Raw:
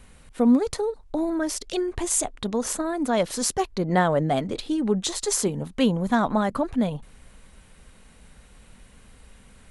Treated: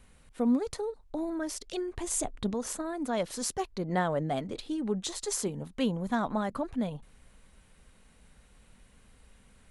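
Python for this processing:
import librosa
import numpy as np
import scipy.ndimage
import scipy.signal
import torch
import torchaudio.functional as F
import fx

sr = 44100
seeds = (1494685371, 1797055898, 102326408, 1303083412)

y = fx.low_shelf(x, sr, hz=460.0, db=8.0, at=(2.07, 2.54))
y = y * librosa.db_to_amplitude(-8.0)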